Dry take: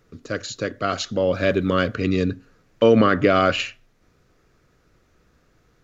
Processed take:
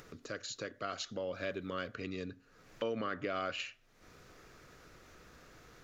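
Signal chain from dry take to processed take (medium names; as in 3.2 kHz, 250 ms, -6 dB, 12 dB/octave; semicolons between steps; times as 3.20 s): compression 2:1, threshold -37 dBFS, peak gain reduction 14.5 dB; bass shelf 370 Hz -8 dB; upward compressor, threshold -41 dBFS; trim -4.5 dB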